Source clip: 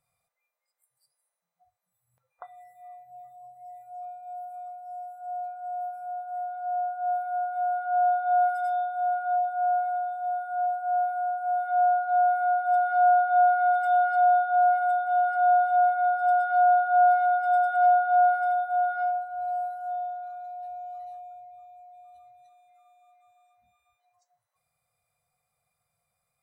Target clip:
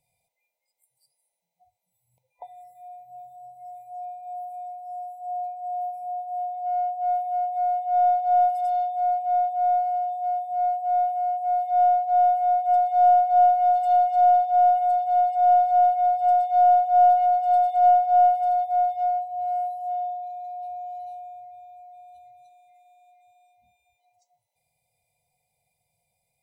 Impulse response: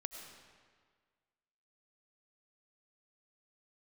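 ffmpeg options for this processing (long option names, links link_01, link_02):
-filter_complex "[0:a]afftfilt=real='re*(1-between(b*sr/4096,1000,2000))':imag='im*(1-between(b*sr/4096,1000,2000))':win_size=4096:overlap=0.75,acrossover=split=1200[link_01][link_02];[link_02]aeval=exprs='clip(val(0),-1,0.00376)':channel_layout=same[link_03];[link_01][link_03]amix=inputs=2:normalize=0,volume=3.5dB"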